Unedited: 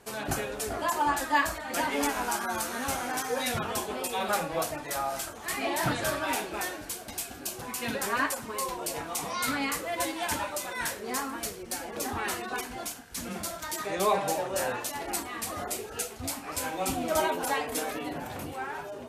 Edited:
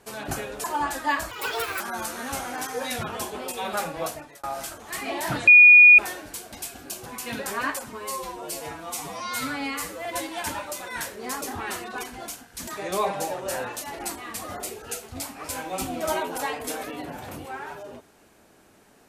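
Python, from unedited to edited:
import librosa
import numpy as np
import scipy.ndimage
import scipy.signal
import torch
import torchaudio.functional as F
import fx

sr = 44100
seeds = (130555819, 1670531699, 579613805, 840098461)

y = fx.edit(x, sr, fx.cut(start_s=0.64, length_s=0.26),
    fx.speed_span(start_s=1.57, length_s=0.79, speed=1.6),
    fx.fade_out_span(start_s=4.62, length_s=0.37),
    fx.bleep(start_s=6.03, length_s=0.51, hz=2450.0, db=-7.5),
    fx.stretch_span(start_s=8.48, length_s=1.42, factor=1.5),
    fx.cut(start_s=11.26, length_s=0.73),
    fx.cut(start_s=13.25, length_s=0.5), tone=tone)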